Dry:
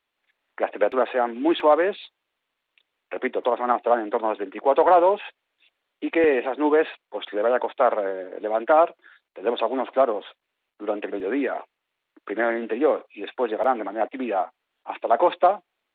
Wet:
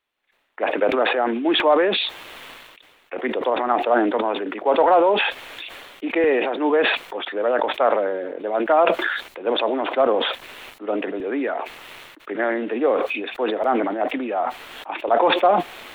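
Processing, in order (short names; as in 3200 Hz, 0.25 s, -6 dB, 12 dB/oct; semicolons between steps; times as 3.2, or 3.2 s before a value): sustainer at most 34 dB/s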